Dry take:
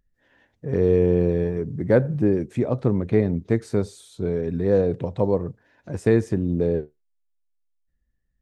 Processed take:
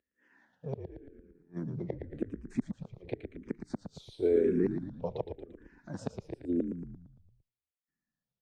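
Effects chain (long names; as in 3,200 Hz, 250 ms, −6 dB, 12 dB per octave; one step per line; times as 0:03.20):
dynamic equaliser 320 Hz, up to +6 dB, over −31 dBFS, Q 1.3
gate with flip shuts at −10 dBFS, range −40 dB
band-pass filter 190–6,700 Hz
echo with shifted repeats 114 ms, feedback 55%, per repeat −42 Hz, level −7 dB
frequency shifter mixed with the dry sound −0.92 Hz
level −3 dB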